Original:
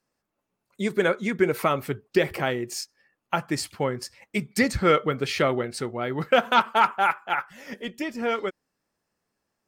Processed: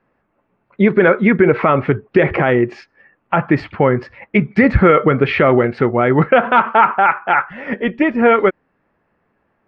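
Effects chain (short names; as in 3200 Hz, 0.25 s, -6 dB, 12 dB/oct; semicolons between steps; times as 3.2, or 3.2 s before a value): LPF 2300 Hz 24 dB/oct; maximiser +17 dB; gain -1 dB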